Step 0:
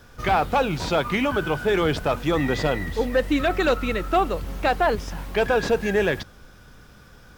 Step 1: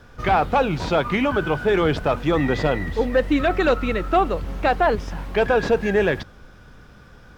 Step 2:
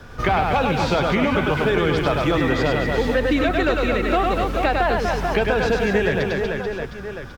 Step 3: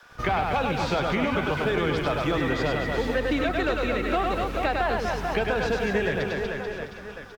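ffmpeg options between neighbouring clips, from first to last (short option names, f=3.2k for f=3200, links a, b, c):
-af "lowpass=f=3k:p=1,volume=2.5dB"
-filter_complex "[0:a]aecho=1:1:100|240|436|710.4|1095:0.631|0.398|0.251|0.158|0.1,acrossover=split=210|1600[a][b][c];[a]acompressor=threshold=-31dB:ratio=4[d];[b]acompressor=threshold=-27dB:ratio=4[e];[c]acompressor=threshold=-34dB:ratio=4[f];[d][e][f]amix=inputs=3:normalize=0,volume=6.5dB"
-filter_complex "[0:a]acrossover=split=620|1200[a][b][c];[a]aeval=exprs='sgn(val(0))*max(abs(val(0))-0.0141,0)':c=same[d];[d][b][c]amix=inputs=3:normalize=0,aecho=1:1:655:0.178,volume=-5dB"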